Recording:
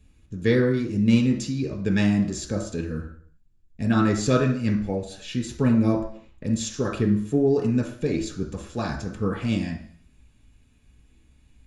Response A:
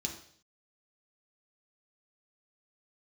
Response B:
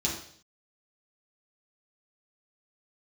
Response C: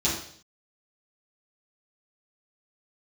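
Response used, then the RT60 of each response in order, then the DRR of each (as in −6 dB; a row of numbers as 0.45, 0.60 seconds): A; 0.55, 0.55, 0.55 seconds; 1.0, −5.0, −9.5 decibels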